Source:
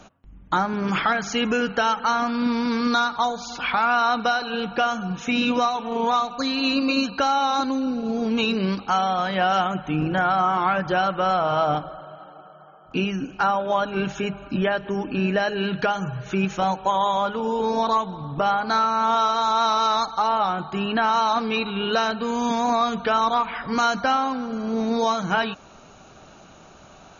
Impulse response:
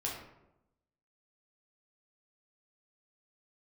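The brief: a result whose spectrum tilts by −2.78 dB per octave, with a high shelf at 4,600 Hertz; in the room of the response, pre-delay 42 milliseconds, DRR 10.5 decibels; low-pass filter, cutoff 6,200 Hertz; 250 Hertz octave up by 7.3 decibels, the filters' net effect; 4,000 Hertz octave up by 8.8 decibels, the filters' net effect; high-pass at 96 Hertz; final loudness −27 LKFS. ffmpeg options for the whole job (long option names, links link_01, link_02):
-filter_complex "[0:a]highpass=96,lowpass=6200,equalizer=frequency=250:width_type=o:gain=8.5,equalizer=frequency=4000:width_type=o:gain=8.5,highshelf=frequency=4600:gain=5.5,asplit=2[link_01][link_02];[1:a]atrim=start_sample=2205,adelay=42[link_03];[link_02][link_03]afir=irnorm=-1:irlink=0,volume=-13dB[link_04];[link_01][link_04]amix=inputs=2:normalize=0,volume=-8.5dB"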